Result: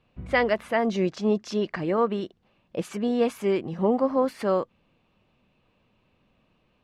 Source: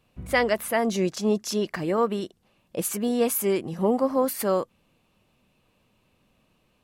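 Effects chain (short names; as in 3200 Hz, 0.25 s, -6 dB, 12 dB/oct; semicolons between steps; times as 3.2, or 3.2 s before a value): LPF 3600 Hz 12 dB/oct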